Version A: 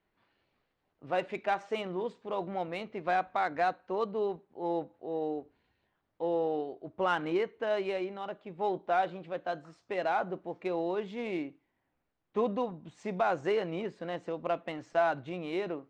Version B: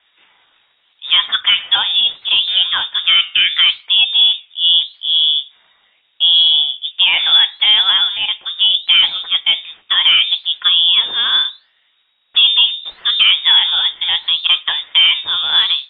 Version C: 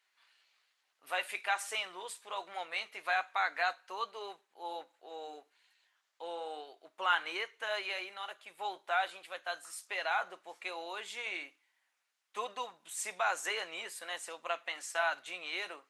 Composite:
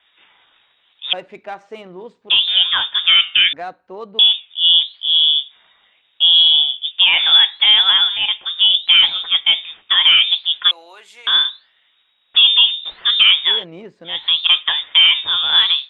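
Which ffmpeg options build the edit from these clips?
-filter_complex "[0:a]asplit=3[a][b][c];[1:a]asplit=5[d][e][f][g][h];[d]atrim=end=1.132[i];[a]atrim=start=1.128:end=2.302[j];[e]atrim=start=2.298:end=3.532[k];[b]atrim=start=3.528:end=4.192[l];[f]atrim=start=4.188:end=10.712[m];[2:a]atrim=start=10.708:end=11.272[n];[g]atrim=start=11.268:end=13.65[o];[c]atrim=start=13.41:end=14.28[p];[h]atrim=start=14.04[q];[i][j]acrossfade=d=0.004:c1=hsin:c2=hsin[r];[r][k]acrossfade=d=0.004:c1=hsin:c2=hsin[s];[s][l]acrossfade=d=0.004:c1=hsin:c2=hsin[t];[t][m]acrossfade=d=0.004:c1=hsin:c2=hsin[u];[u][n]acrossfade=d=0.004:c1=hsin:c2=hsin[v];[v][o]acrossfade=d=0.004:c1=hsin:c2=hsin[w];[w][p]acrossfade=d=0.24:c1=tri:c2=tri[x];[x][q]acrossfade=d=0.24:c1=tri:c2=tri"

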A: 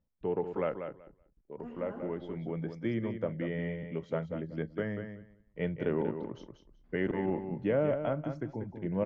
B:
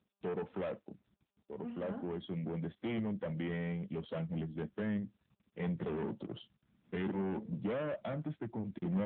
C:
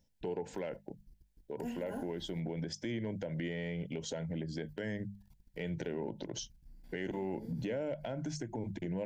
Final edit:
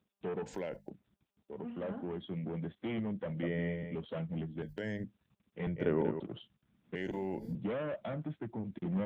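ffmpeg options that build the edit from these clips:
-filter_complex "[2:a]asplit=3[a][b][c];[0:a]asplit=2[d][e];[1:a]asplit=6[f][g][h][i][j][k];[f]atrim=end=0.462[l];[a]atrim=start=0.458:end=0.902[m];[g]atrim=start=0.898:end=3.432[n];[d]atrim=start=3.428:end=3.952[o];[h]atrim=start=3.948:end=4.622[p];[b]atrim=start=4.618:end=5.042[q];[i]atrim=start=5.038:end=5.672[r];[e]atrim=start=5.668:end=6.202[s];[j]atrim=start=6.198:end=6.952[t];[c]atrim=start=6.948:end=7.552[u];[k]atrim=start=7.548[v];[l][m]acrossfade=d=0.004:c1=hsin:c2=hsin[w];[w][n]acrossfade=d=0.004:c1=hsin:c2=hsin[x];[x][o]acrossfade=d=0.004:c1=hsin:c2=hsin[y];[y][p]acrossfade=d=0.004:c1=hsin:c2=hsin[z];[z][q]acrossfade=d=0.004:c1=hsin:c2=hsin[aa];[aa][r]acrossfade=d=0.004:c1=hsin:c2=hsin[ab];[ab][s]acrossfade=d=0.004:c1=hsin:c2=hsin[ac];[ac][t]acrossfade=d=0.004:c1=hsin:c2=hsin[ad];[ad][u]acrossfade=d=0.004:c1=hsin:c2=hsin[ae];[ae][v]acrossfade=d=0.004:c1=hsin:c2=hsin"

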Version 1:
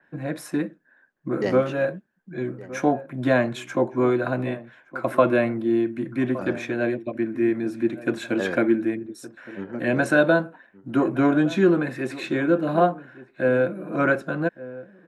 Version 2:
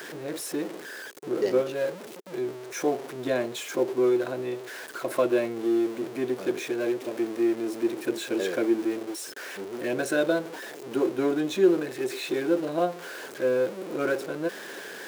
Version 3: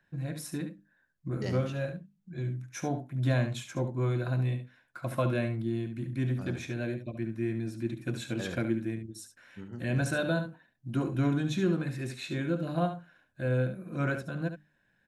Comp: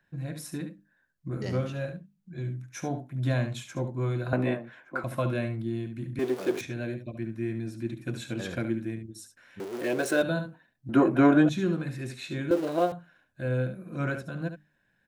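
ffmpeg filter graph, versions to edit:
-filter_complex "[0:a]asplit=2[a][b];[1:a]asplit=3[c][d][e];[2:a]asplit=6[f][g][h][i][j][k];[f]atrim=end=4.332[l];[a]atrim=start=4.328:end=5.042[m];[g]atrim=start=5.038:end=6.192[n];[c]atrim=start=6.188:end=6.612[o];[h]atrim=start=6.608:end=9.602[p];[d]atrim=start=9.598:end=10.222[q];[i]atrim=start=10.218:end=10.892[r];[b]atrim=start=10.888:end=11.492[s];[j]atrim=start=11.488:end=12.512[t];[e]atrim=start=12.508:end=12.922[u];[k]atrim=start=12.918[v];[l][m]acrossfade=d=0.004:c1=hsin:c2=hsin[w];[w][n]acrossfade=d=0.004:c1=hsin:c2=hsin[x];[x][o]acrossfade=d=0.004:c1=hsin:c2=hsin[y];[y][p]acrossfade=d=0.004:c1=hsin:c2=hsin[z];[z][q]acrossfade=d=0.004:c1=hsin:c2=hsin[aa];[aa][r]acrossfade=d=0.004:c1=hsin:c2=hsin[ab];[ab][s]acrossfade=d=0.004:c1=hsin:c2=hsin[ac];[ac][t]acrossfade=d=0.004:c1=hsin:c2=hsin[ad];[ad][u]acrossfade=d=0.004:c1=hsin:c2=hsin[ae];[ae][v]acrossfade=d=0.004:c1=hsin:c2=hsin"

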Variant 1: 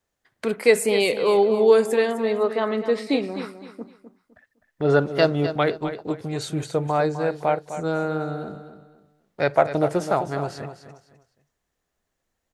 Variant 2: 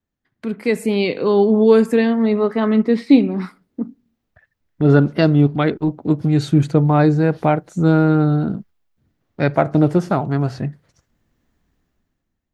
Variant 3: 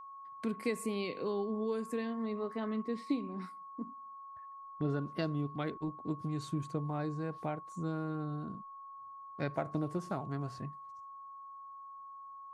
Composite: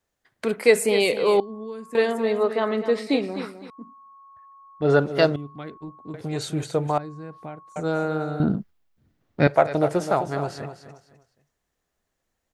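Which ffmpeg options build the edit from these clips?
-filter_complex "[2:a]asplit=4[a][b][c][d];[0:a]asplit=6[e][f][g][h][i][j];[e]atrim=end=1.402[k];[a]atrim=start=1.398:end=1.952[l];[f]atrim=start=1.948:end=3.702[m];[b]atrim=start=3.698:end=4.822[n];[g]atrim=start=4.818:end=5.362[o];[c]atrim=start=5.358:end=6.142[p];[h]atrim=start=6.138:end=6.982[q];[d]atrim=start=6.978:end=7.762[r];[i]atrim=start=7.758:end=8.402[s];[1:a]atrim=start=8.398:end=9.472[t];[j]atrim=start=9.468[u];[k][l]acrossfade=d=0.004:c1=hsin:c2=hsin[v];[v][m]acrossfade=d=0.004:c1=hsin:c2=hsin[w];[w][n]acrossfade=d=0.004:c1=hsin:c2=hsin[x];[x][o]acrossfade=d=0.004:c1=hsin:c2=hsin[y];[y][p]acrossfade=d=0.004:c1=hsin:c2=hsin[z];[z][q]acrossfade=d=0.004:c1=hsin:c2=hsin[aa];[aa][r]acrossfade=d=0.004:c1=hsin:c2=hsin[ab];[ab][s]acrossfade=d=0.004:c1=hsin:c2=hsin[ac];[ac][t]acrossfade=d=0.004:c1=hsin:c2=hsin[ad];[ad][u]acrossfade=d=0.004:c1=hsin:c2=hsin"

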